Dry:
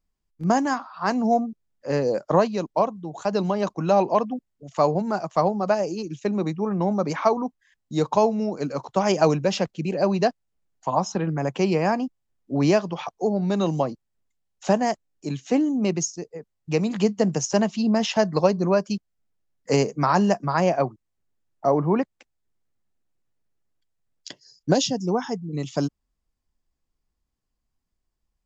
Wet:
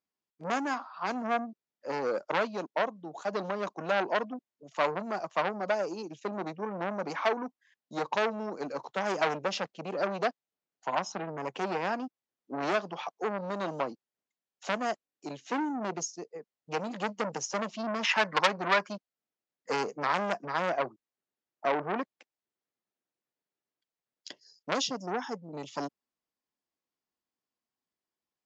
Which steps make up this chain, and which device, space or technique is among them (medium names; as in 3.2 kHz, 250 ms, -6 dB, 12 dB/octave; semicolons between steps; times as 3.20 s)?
18.03–18.89 s: high-order bell 1.5 kHz +15 dB; public-address speaker with an overloaded transformer (transformer saturation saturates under 4 kHz; band-pass 280–6100 Hz); trim -4.5 dB